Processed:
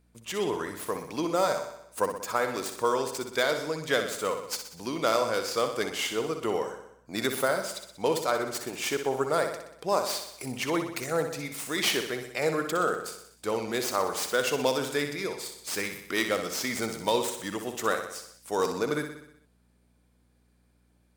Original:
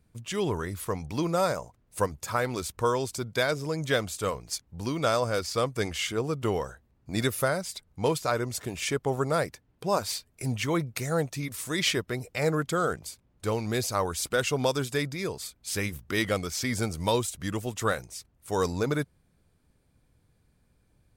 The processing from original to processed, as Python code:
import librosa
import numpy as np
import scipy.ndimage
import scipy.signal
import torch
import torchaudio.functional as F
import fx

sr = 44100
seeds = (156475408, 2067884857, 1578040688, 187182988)

y = fx.tracing_dist(x, sr, depth_ms=0.067)
y = scipy.signal.sosfilt(scipy.signal.butter(2, 260.0, 'highpass', fs=sr, output='sos'), y)
y = fx.add_hum(y, sr, base_hz=60, snr_db=34)
y = fx.echo_feedback(y, sr, ms=62, feedback_pct=58, wet_db=-8)